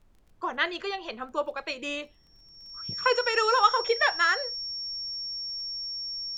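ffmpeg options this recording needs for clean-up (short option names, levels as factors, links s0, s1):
-af "adeclick=t=4,bandreject=f=5500:w=30,agate=range=0.0891:threshold=0.00355"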